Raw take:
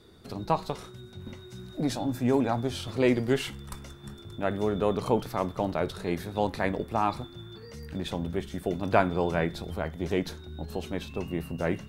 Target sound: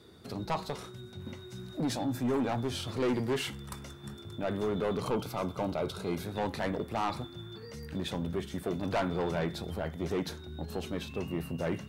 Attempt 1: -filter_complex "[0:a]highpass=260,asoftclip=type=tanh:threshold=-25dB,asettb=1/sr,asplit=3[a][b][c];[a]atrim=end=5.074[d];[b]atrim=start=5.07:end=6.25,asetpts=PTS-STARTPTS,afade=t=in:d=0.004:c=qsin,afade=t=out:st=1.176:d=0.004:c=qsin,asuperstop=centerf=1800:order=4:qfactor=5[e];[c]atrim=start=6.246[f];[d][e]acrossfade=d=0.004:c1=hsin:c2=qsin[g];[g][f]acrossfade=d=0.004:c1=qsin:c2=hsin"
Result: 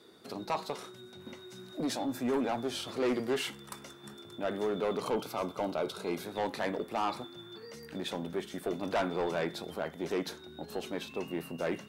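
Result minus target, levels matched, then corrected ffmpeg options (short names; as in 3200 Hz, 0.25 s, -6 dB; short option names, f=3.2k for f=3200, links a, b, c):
125 Hz band -9.0 dB
-filter_complex "[0:a]highpass=71,asoftclip=type=tanh:threshold=-25dB,asettb=1/sr,asplit=3[a][b][c];[a]atrim=end=5.074[d];[b]atrim=start=5.07:end=6.25,asetpts=PTS-STARTPTS,afade=t=in:d=0.004:c=qsin,afade=t=out:st=1.176:d=0.004:c=qsin,asuperstop=centerf=1800:order=4:qfactor=5[e];[c]atrim=start=6.246[f];[d][e]acrossfade=d=0.004:c1=hsin:c2=qsin[g];[g][f]acrossfade=d=0.004:c1=qsin:c2=hsin"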